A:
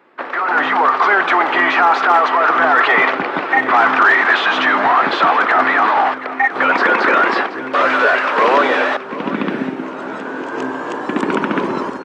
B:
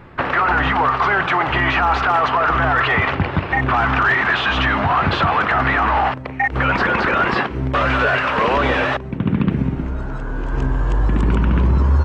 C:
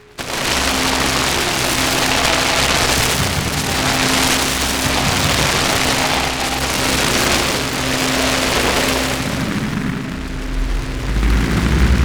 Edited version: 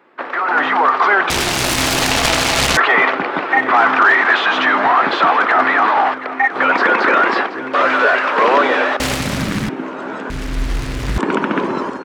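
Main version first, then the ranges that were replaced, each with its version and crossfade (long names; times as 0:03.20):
A
0:01.30–0:02.77: punch in from C
0:09.00–0:09.69: punch in from C
0:10.30–0:11.18: punch in from C
not used: B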